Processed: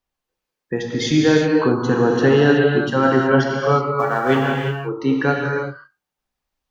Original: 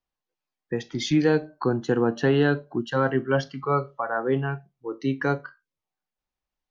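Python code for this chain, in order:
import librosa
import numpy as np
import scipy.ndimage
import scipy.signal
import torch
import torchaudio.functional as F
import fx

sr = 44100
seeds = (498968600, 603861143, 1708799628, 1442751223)

y = fx.envelope_flatten(x, sr, power=0.6, at=(3.97, 4.5), fade=0.02)
y = fx.rev_gated(y, sr, seeds[0], gate_ms=390, shape='flat', drr_db=-1.0)
y = y * librosa.db_to_amplitude(4.5)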